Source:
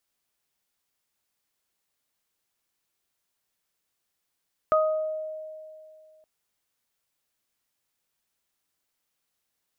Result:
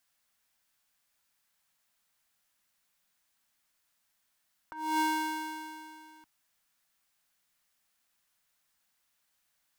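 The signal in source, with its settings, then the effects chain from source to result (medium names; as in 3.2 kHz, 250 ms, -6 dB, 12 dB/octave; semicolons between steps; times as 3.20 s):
additive tone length 1.52 s, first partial 625 Hz, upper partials -0.5 dB, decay 2.46 s, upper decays 0.60 s, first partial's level -18.5 dB
cycle switcher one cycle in 2, inverted; fifteen-band graphic EQ 100 Hz -7 dB, 400 Hz -11 dB, 1.6 kHz +3 dB; compressor with a negative ratio -30 dBFS, ratio -0.5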